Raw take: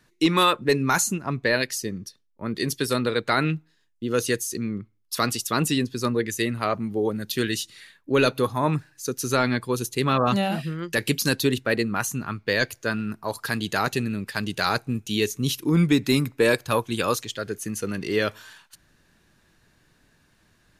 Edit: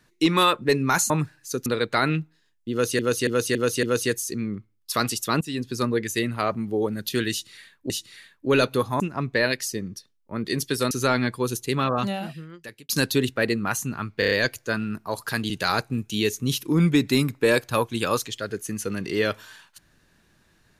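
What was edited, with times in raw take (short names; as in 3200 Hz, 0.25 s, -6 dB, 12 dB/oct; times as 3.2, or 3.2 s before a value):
1.1–3.01 swap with 8.64–9.2
4.06–4.34 loop, 5 plays
5.64–5.94 fade in, from -20.5 dB
7.54–8.13 loop, 2 plays
9.84–11.18 fade out
12.48 stutter 0.03 s, 5 plays
13.67–14.47 cut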